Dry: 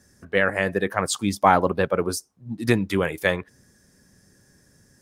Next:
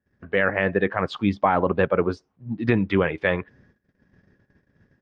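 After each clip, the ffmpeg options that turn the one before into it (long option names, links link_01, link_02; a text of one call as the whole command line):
ffmpeg -i in.wav -af "lowpass=frequency=3100:width=0.5412,lowpass=frequency=3100:width=1.3066,agate=range=-23dB:threshold=-57dB:ratio=16:detection=peak,alimiter=level_in=9.5dB:limit=-1dB:release=50:level=0:latency=1,volume=-7dB" out.wav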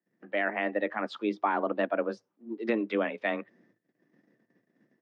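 ffmpeg -i in.wav -af "afreqshift=110,volume=-8dB" out.wav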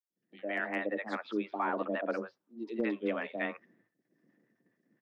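ffmpeg -i in.wav -filter_complex "[0:a]dynaudnorm=framelen=110:gausssize=5:maxgain=5dB,acrossover=split=680|3900[link_01][link_02][link_03];[link_01]adelay=100[link_04];[link_02]adelay=160[link_05];[link_04][link_05][link_03]amix=inputs=3:normalize=0,aeval=exprs='clip(val(0),-1,0.2)':channel_layout=same,volume=-8dB" out.wav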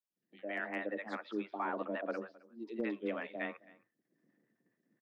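ffmpeg -i in.wav -af "aecho=1:1:264:0.0794,volume=-4.5dB" out.wav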